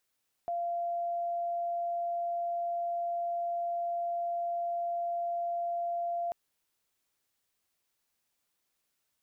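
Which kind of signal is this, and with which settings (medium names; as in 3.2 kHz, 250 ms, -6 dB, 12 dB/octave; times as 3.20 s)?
tone sine 690 Hz -30 dBFS 5.84 s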